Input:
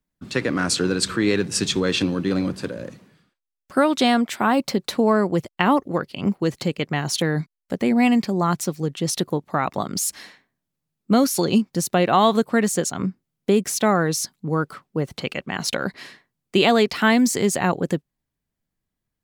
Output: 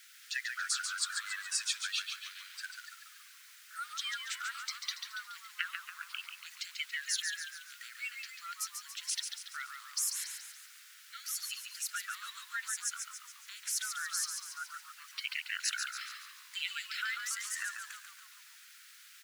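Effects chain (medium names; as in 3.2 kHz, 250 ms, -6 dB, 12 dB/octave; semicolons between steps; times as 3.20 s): coarse spectral quantiser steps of 30 dB; compression, threshold -24 dBFS, peak gain reduction 11 dB; added noise pink -48 dBFS; Chebyshev high-pass 1.4 kHz, order 6; frequency-shifting echo 141 ms, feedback 50%, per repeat -84 Hz, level -6 dB; trim -4.5 dB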